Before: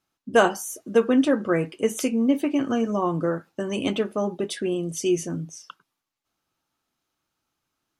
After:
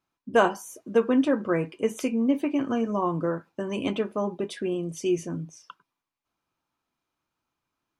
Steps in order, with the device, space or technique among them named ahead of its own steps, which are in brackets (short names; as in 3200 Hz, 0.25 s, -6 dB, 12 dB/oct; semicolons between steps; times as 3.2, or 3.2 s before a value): inside a helmet (high shelf 4000 Hz -8 dB; small resonant body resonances 1000/2400 Hz, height 9 dB); gain -2.5 dB